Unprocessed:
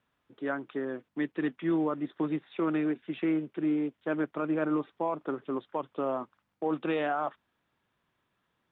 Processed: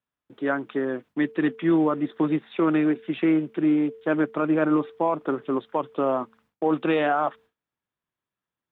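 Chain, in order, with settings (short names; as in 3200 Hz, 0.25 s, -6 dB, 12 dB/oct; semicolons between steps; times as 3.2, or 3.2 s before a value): de-hum 224 Hz, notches 2; gate with hold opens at -60 dBFS; gain +7.5 dB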